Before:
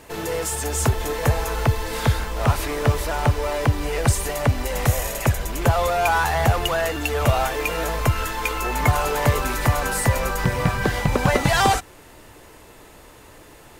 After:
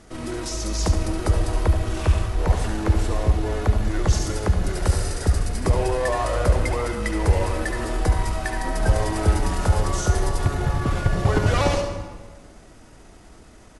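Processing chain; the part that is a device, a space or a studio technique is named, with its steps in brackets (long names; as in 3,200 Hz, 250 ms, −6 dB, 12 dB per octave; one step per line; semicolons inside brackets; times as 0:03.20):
monster voice (pitch shifter −5.5 semitones; low-shelf EQ 150 Hz +7.5 dB; single-tap delay 71 ms −9.5 dB; convolution reverb RT60 1.4 s, pre-delay 61 ms, DRR 6.5 dB)
level −5 dB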